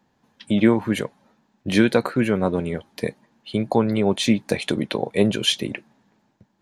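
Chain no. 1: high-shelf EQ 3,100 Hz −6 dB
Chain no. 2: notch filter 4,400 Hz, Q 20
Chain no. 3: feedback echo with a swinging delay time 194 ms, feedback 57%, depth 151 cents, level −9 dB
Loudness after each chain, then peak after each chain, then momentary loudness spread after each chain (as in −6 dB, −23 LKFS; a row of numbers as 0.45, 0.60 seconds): −22.5, −22.0, −21.5 LKFS; −4.0, −3.5, −3.5 dBFS; 12, 12, 14 LU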